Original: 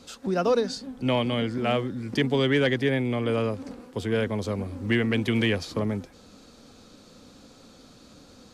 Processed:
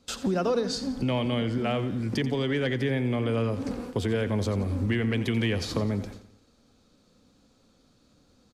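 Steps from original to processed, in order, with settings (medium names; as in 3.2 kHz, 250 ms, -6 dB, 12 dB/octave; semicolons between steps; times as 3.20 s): bass shelf 160 Hz +6 dB; in parallel at +0.5 dB: peak limiter -23 dBFS, peak gain reduction 11 dB; on the sum: compression 2.5:1, threshold -27 dBFS, peak gain reduction 8.5 dB; gate with hold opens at -29 dBFS; on a send: feedback delay 87 ms, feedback 48%, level -13.5 dB; on the sum: gain riding 2 s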